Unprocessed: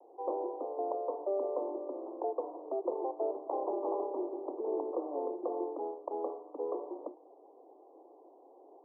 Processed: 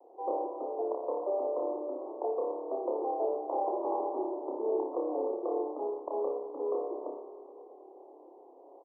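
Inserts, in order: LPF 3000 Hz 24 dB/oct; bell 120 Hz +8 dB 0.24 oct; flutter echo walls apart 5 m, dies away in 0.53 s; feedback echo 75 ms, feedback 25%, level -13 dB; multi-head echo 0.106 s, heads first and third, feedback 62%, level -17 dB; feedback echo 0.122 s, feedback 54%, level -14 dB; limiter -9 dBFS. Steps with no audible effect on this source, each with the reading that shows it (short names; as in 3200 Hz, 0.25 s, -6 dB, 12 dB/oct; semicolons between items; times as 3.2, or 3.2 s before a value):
LPF 3000 Hz: input band ends at 1200 Hz; bell 120 Hz: input band starts at 240 Hz; limiter -9 dBFS: input peak -18.5 dBFS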